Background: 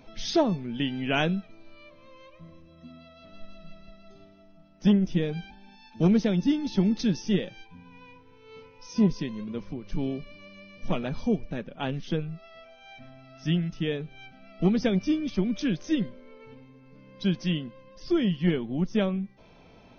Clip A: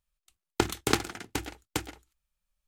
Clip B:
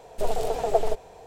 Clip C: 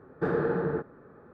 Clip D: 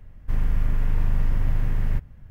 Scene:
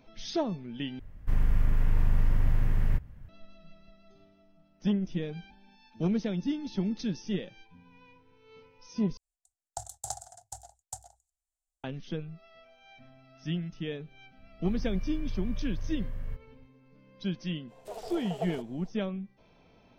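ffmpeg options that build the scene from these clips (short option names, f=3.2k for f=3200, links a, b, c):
-filter_complex "[4:a]asplit=2[a][b];[0:a]volume=-7dB[c];[1:a]firequalizer=gain_entry='entry(110,0);entry(210,-26);entry(390,-28);entry(700,14);entry(1100,-14);entry(1600,-13);entry(2300,-26);entry(3600,-9);entry(7400,14);entry(14000,-5)':delay=0.05:min_phase=1[d];[b]aecho=1:1:1.8:0.42[e];[2:a]highpass=f=250:p=1[f];[c]asplit=3[g][h][i];[g]atrim=end=0.994[j];[a]atrim=end=2.3,asetpts=PTS-STARTPTS,volume=-2.5dB[k];[h]atrim=start=3.286:end=9.174[l];[d]atrim=end=2.67,asetpts=PTS-STARTPTS,volume=-12.5dB[m];[i]atrim=start=11.836[n];[e]atrim=end=2.3,asetpts=PTS-STARTPTS,volume=-16dB,afade=t=in:d=0.004:c=hsin,afade=t=out:st=2.296:d=0.004:c=hsin,adelay=14370[o];[f]atrim=end=1.26,asetpts=PTS-STARTPTS,volume=-12.5dB,afade=t=in:d=0.05,afade=t=out:st=1.21:d=0.05,adelay=17670[p];[j][k]acrossfade=d=0.004:c1=hsin:c2=hsin[q];[q][l]acrossfade=d=0.004:c1=hsin:c2=hsin[r];[r][m]acrossfade=d=0.004:c1=hsin:c2=hsin[s];[s][n]acrossfade=d=0.004:c1=hsin:c2=hsin[t];[t][o][p]amix=inputs=3:normalize=0"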